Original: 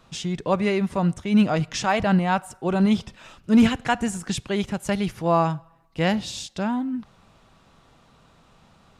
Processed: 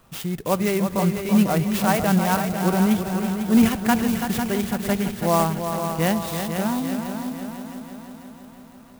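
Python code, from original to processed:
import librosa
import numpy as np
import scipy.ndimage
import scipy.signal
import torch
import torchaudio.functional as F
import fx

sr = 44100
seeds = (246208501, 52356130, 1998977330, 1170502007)

y = fx.echo_heads(x, sr, ms=166, heads='second and third', feedback_pct=58, wet_db=-8)
y = fx.clock_jitter(y, sr, seeds[0], jitter_ms=0.052)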